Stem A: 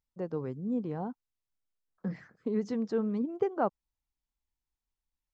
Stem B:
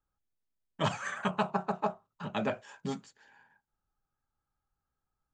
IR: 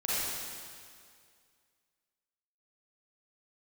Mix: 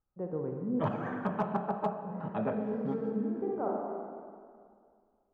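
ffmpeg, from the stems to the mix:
-filter_complex "[0:a]volume=-4.5dB,asplit=2[link_01][link_02];[link_02]volume=-6.5dB[link_03];[1:a]volume=-2dB,asplit=3[link_04][link_05][link_06];[link_05]volume=-12dB[link_07];[link_06]apad=whole_len=235195[link_08];[link_01][link_08]sidechaincompress=threshold=-49dB:ratio=8:attack=16:release=1320[link_09];[2:a]atrim=start_sample=2205[link_10];[link_03][link_07]amix=inputs=2:normalize=0[link_11];[link_11][link_10]afir=irnorm=-1:irlink=0[link_12];[link_09][link_04][link_12]amix=inputs=3:normalize=0,lowpass=1100,asoftclip=type=hard:threshold=-20dB"

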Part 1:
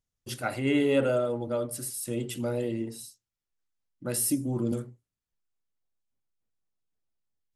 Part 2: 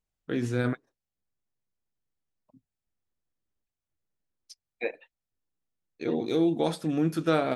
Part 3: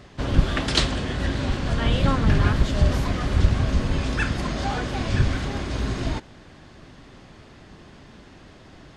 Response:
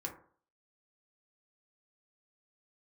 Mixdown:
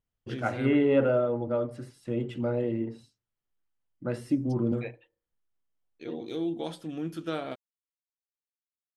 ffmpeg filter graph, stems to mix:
-filter_complex "[0:a]lowpass=2000,volume=1.5dB[link_01];[1:a]equalizer=frequency=3100:width_type=o:width=0.22:gain=10.5,volume=-10dB,asplit=2[link_02][link_03];[link_03]volume=-13.5dB[link_04];[3:a]atrim=start_sample=2205[link_05];[link_04][link_05]afir=irnorm=-1:irlink=0[link_06];[link_01][link_02][link_06]amix=inputs=3:normalize=0"

